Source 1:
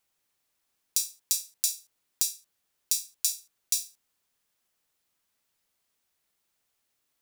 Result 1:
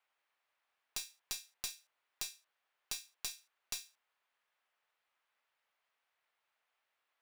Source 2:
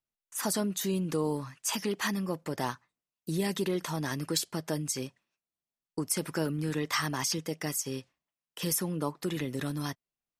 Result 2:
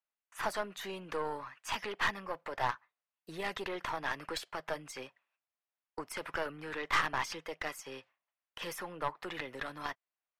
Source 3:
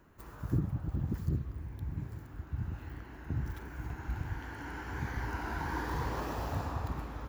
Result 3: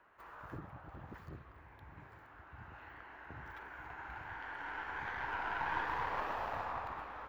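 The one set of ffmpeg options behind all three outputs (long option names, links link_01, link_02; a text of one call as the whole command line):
ffmpeg -i in.wav -filter_complex "[0:a]acrossover=split=560 3000:gain=0.0794 1 0.0891[link_01][link_02][link_03];[link_01][link_02][link_03]amix=inputs=3:normalize=0,aeval=exprs='0.106*(cos(1*acos(clip(val(0)/0.106,-1,1)))-cos(1*PI/2))+0.0119*(cos(6*acos(clip(val(0)/0.106,-1,1)))-cos(6*PI/2))':channel_layout=same,volume=3dB" out.wav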